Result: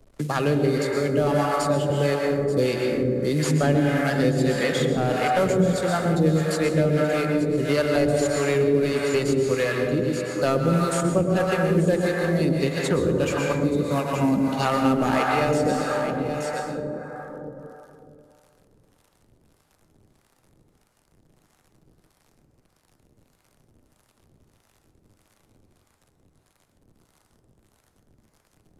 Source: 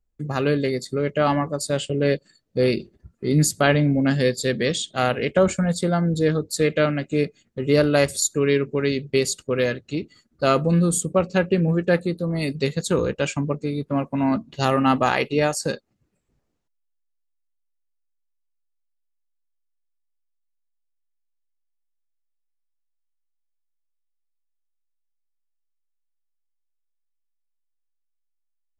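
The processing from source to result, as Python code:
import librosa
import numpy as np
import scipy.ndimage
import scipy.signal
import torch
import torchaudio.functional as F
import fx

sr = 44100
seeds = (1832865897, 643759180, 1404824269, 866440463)

y = fx.cvsd(x, sr, bps=64000)
y = y + 10.0 ** (-13.5 / 20.0) * np.pad(y, (int(877 * sr / 1000.0), 0))[:len(y)]
y = fx.rev_plate(y, sr, seeds[0], rt60_s=2.5, hf_ratio=0.3, predelay_ms=100, drr_db=0.0)
y = fx.harmonic_tremolo(y, sr, hz=1.6, depth_pct=70, crossover_hz=610.0)
y = fx.band_squash(y, sr, depth_pct=70)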